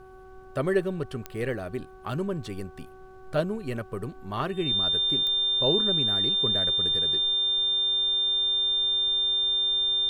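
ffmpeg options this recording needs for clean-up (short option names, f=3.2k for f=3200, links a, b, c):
-af "adeclick=t=4,bandreject=f=376.6:t=h:w=4,bandreject=f=753.2:t=h:w=4,bandreject=f=1.1298k:t=h:w=4,bandreject=f=1.5064k:t=h:w=4,bandreject=f=3.6k:w=30,agate=range=-21dB:threshold=-38dB"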